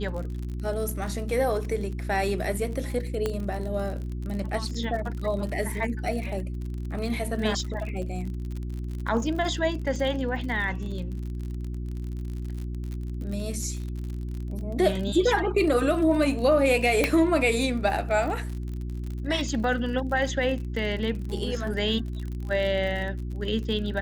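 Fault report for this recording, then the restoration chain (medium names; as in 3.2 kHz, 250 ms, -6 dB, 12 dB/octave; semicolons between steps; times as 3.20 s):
crackle 48 per s -33 dBFS
hum 60 Hz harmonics 6 -32 dBFS
3.26 s: pop -14 dBFS
17.04 s: pop -8 dBFS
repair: de-click; de-hum 60 Hz, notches 6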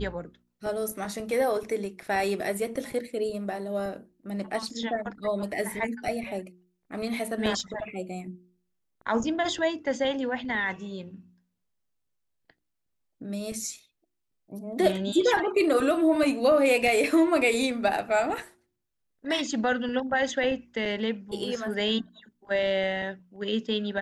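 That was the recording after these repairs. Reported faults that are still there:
nothing left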